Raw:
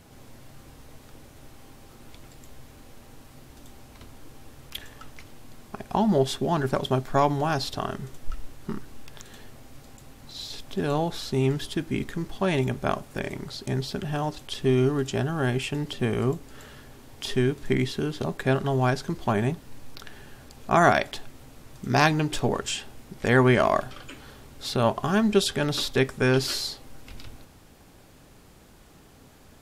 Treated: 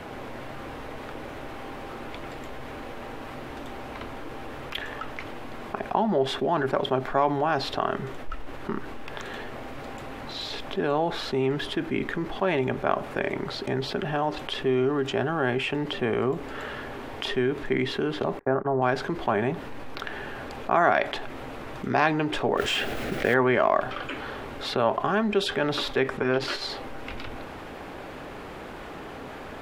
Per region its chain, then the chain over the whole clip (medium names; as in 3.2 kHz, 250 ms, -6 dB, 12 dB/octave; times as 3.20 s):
18.39–18.82 s: low-pass 1.5 kHz 24 dB/octave + gate -30 dBFS, range -54 dB
22.57–23.34 s: Butterworth band-stop 1 kHz, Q 1.9 + modulation noise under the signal 10 dB + level flattener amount 50%
26.17–26.70 s: treble shelf 12 kHz -11.5 dB + transformer saturation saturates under 370 Hz
whole clip: three-band isolator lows -12 dB, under 290 Hz, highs -20 dB, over 3 kHz; level flattener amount 50%; trim -2.5 dB